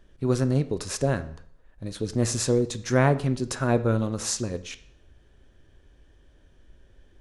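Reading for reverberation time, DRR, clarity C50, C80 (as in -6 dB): 0.60 s, 11.0 dB, 15.5 dB, 18.0 dB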